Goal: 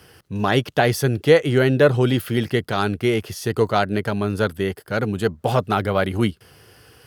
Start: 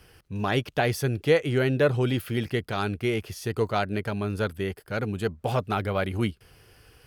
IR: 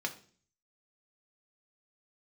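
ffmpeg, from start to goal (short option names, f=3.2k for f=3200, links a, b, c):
-af "highpass=96,equalizer=f=2.4k:w=6.3:g=-5.5,volume=7dB"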